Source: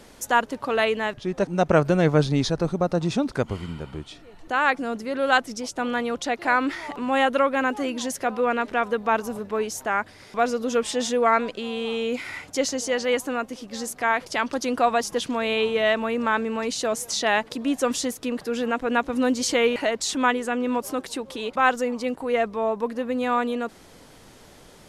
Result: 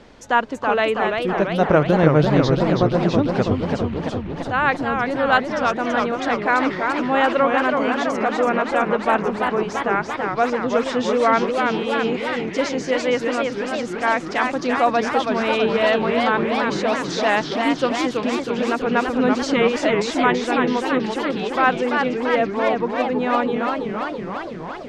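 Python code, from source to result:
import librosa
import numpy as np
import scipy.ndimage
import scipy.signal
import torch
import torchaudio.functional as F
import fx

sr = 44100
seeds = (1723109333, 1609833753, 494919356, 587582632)

y = fx.air_absorb(x, sr, metres=150.0)
y = fx.echo_warbled(y, sr, ms=333, feedback_pct=71, rate_hz=2.8, cents=208, wet_db=-4.5)
y = F.gain(torch.from_numpy(y), 3.0).numpy()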